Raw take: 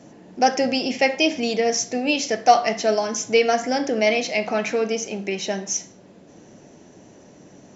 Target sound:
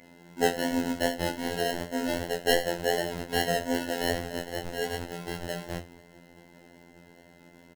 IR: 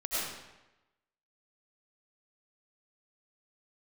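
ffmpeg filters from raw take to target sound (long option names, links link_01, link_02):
-filter_complex "[0:a]asettb=1/sr,asplit=3[link_01][link_02][link_03];[link_01]atrim=end=4.124[link_04];[link_02]atrim=start=4.12:end=4.79,asetpts=PTS-STARTPTS,afade=type=in:duration=0.004:curve=qsin,afade=type=out:start_time=0.666:duration=0.004:curve=qsin,lowshelf=frequency=480:gain=-10[link_05];[link_03]atrim=start=4.786[link_06];[link_04][link_05]acrossfade=duration=0.004:curve1=hsin:curve2=qsin[link_07];[link_07][link_06]acrossfade=duration=0.004:curve1=qsin:curve2=hsin,asplit=5[link_08][link_09][link_10][link_11][link_12];[link_09]adelay=208,afreqshift=120,volume=-21.5dB[link_13];[link_10]adelay=416,afreqshift=240,volume=-27.2dB[link_14];[link_11]adelay=624,afreqshift=360,volume=-32.9dB[link_15];[link_12]adelay=832,afreqshift=480,volume=-38.5dB[link_16];[link_08][link_13][link_14][link_15][link_16]amix=inputs=5:normalize=0,acrossover=split=270|470|1400[link_17][link_18][link_19][link_20];[link_20]aeval=exprs='(mod(9.44*val(0)+1,2)-1)/9.44':channel_layout=same[link_21];[link_17][link_18][link_19][link_21]amix=inputs=4:normalize=0,acrusher=samples=37:mix=1:aa=0.000001,flanger=delay=19.5:depth=5.6:speed=2.6,aeval=exprs='val(0)+0.00501*sin(2*PI*2100*n/s)':channel_layout=same,afftfilt=real='hypot(re,im)*cos(PI*b)':imag='0':win_size=2048:overlap=0.75,volume=-1dB"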